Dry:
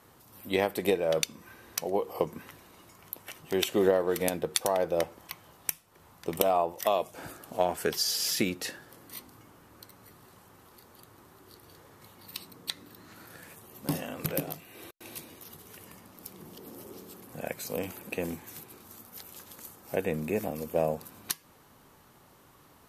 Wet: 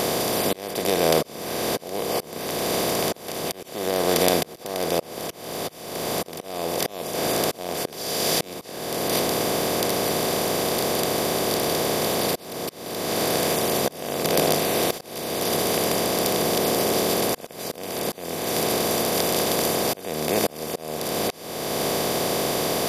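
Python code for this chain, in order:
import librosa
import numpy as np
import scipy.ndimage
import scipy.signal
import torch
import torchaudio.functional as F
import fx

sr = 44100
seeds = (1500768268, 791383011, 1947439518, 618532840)

y = fx.bin_compress(x, sr, power=0.2)
y = fx.auto_swell(y, sr, attack_ms=538.0)
y = y * librosa.db_to_amplitude(-1.0)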